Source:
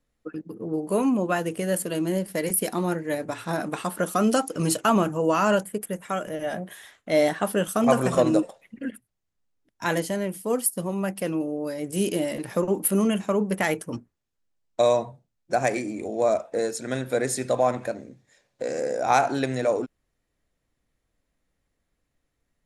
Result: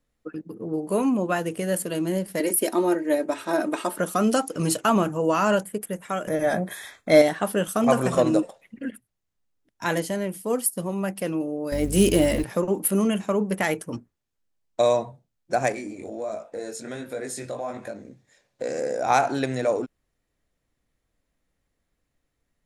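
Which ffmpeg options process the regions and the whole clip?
-filter_complex "[0:a]asettb=1/sr,asplit=3[a][b][c];[a]atrim=end=2.404[d];[b]atrim=start=2.4:end=3.98,asetpts=PTS-STARTPTS,afade=t=in:d=0.004:c=qsin,afade=t=out:st=1.576:d=0.004:c=qsin,highpass=230,equalizer=f=410:w=1.1:g=5.5,aecho=1:1:3.2:0.55,atrim=end_sample=69678[e];[c]atrim=start=3.976[f];[d][e]acrossfade=d=0.004:c1=hsin:c2=qsin[g];[g][f]acrossfade=d=0.004:c1=qsin:c2=hsin,asettb=1/sr,asplit=3[h][i][j];[h]atrim=end=6.274[k];[i]atrim=start=6.27:end=7.22,asetpts=PTS-STARTPTS,afade=t=in:d=0.004:c=qsin,afade=t=out:st=0.946:d=0.004:c=qsin,acontrast=71,asuperstop=centerf=2900:order=20:qfactor=6.4[l];[j]atrim=start=7.216[m];[k][l]acrossfade=d=0.004:c1=hsin:c2=qsin[n];[n][m]acrossfade=d=0.004:c1=qsin:c2=hsin,asettb=1/sr,asplit=3[o][p][q];[o]atrim=end=11.724[r];[p]atrim=start=11.72:end=12.44,asetpts=PTS-STARTPTS,afade=t=in:d=0.004:c=qsin,afade=t=out:st=0.716:d=0.004:c=qsin,aeval=exprs='val(0)+0.0158*(sin(2*PI*50*n/s)+sin(2*PI*2*50*n/s)/2+sin(2*PI*3*50*n/s)/3+sin(2*PI*4*50*n/s)/4+sin(2*PI*5*50*n/s)/5)':c=same,acontrast=72,acrusher=bits=7:mode=log:mix=0:aa=0.000001[s];[q]atrim=start=12.436[t];[r][s]acrossfade=d=0.004:c1=hsin:c2=qsin[u];[u][t]acrossfade=d=0.004:c1=qsin:c2=hsin,asettb=1/sr,asplit=3[v][w][x];[v]atrim=end=15.724[y];[w]atrim=start=15.72:end=18.05,asetpts=PTS-STARTPTS,afade=t=in:d=0.004:c=qsin,afade=t=out:st=2.326:d=0.004:c=qsin,flanger=delay=18.5:depth=3.4:speed=1.4,acompressor=threshold=-30dB:ratio=2.5:attack=3.2:release=140:knee=1:detection=peak[z];[x]atrim=start=18.046[aa];[y][z]acrossfade=d=0.004:c1=hsin:c2=qsin[ab];[ab][aa]acrossfade=d=0.004:c1=qsin:c2=hsin"

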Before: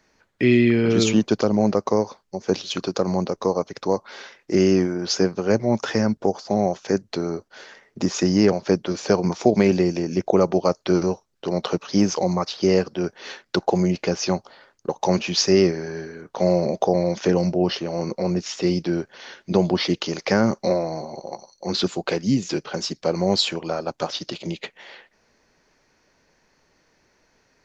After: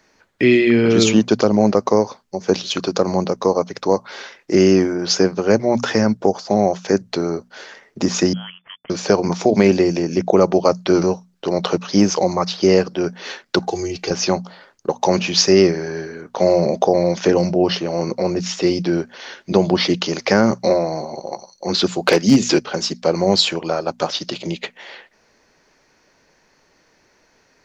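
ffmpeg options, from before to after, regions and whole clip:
-filter_complex "[0:a]asettb=1/sr,asplit=3[a][b][c];[a]atrim=end=8.334[d];[b]atrim=start=8.33:end=8.9,asetpts=PTS-STARTPTS,afade=t=in:d=0.004:c=qsin,afade=t=out:st=0.566:d=0.004:c=qsin,aderivative,aeval=exprs='sgn(val(0))*max(abs(val(0))-0.00188,0)':c=same,lowpass=f=3k:t=q:w=0.5098,lowpass=f=3k:t=q:w=0.6013,lowpass=f=3k:t=q:w=0.9,lowpass=f=3k:t=q:w=2.563,afreqshift=-3500[e];[c]atrim=start=8.896[f];[d][e]acrossfade=d=0.004:c1=hsin:c2=qsin[g];[g][f]acrossfade=d=0.004:c1=qsin:c2=hsin,asettb=1/sr,asplit=3[h][i][j];[h]atrim=end=13.624[k];[i]atrim=start=13.62:end=14.11,asetpts=PTS-STARTPTS,afade=t=in:d=0.004:c=qsin,afade=t=out:st=0.486:d=0.004:c=qsin,aecho=1:1:2.6:0.81,atrim=end_sample=21609,acrossover=split=130|3000[l][m][n];[m]acompressor=threshold=-43dB:ratio=1.5:attack=3.2:release=140:knee=2.83:detection=peak[o];[l][o][n]amix=inputs=3:normalize=0[p];[j]atrim=start=14.106[q];[k][p]acrossfade=d=0.004:c1=hsin:c2=qsin[r];[r][q]acrossfade=d=0.004:c1=qsin:c2=hsin,asettb=1/sr,asplit=3[s][t][u];[s]atrim=end=22.024[v];[t]atrim=start=22.02:end=22.59,asetpts=PTS-STARTPTS,afade=t=in:d=0.004:c=qsin,afade=t=out:st=0.566:d=0.004:c=qsin,highpass=f=180:p=1,aeval=exprs='0.188*(abs(mod(val(0)/0.188+3,4)-2)-1)':c=same,acontrast=55[w];[u]atrim=start=22.586[x];[v][w]acrossfade=d=0.004:c1=hsin:c2=qsin[y];[y][x]acrossfade=d=0.004:c1=qsin:c2=hsin,lowshelf=f=130:g=-4.5,bandreject=f=60:t=h:w=6,bandreject=f=120:t=h:w=6,bandreject=f=180:t=h:w=6,bandreject=f=240:t=h:w=6,alimiter=level_in=6.5dB:limit=-1dB:release=50:level=0:latency=1,volume=-1dB"

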